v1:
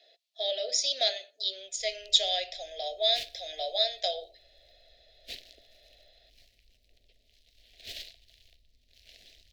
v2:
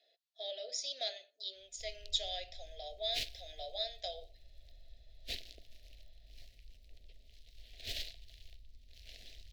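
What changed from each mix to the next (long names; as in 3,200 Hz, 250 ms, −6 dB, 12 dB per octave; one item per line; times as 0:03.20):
speech −11.5 dB
master: add low-shelf EQ 110 Hz +12 dB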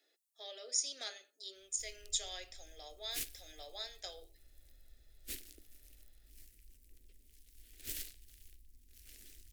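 background −5.0 dB
master: remove drawn EQ curve 170 Hz 0 dB, 320 Hz −11 dB, 690 Hz +13 dB, 1,000 Hz −21 dB, 1,800 Hz −2 dB, 4,000 Hz +7 dB, 8,900 Hz −19 dB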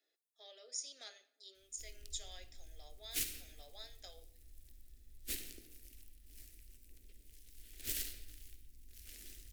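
speech −9.0 dB
reverb: on, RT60 1.1 s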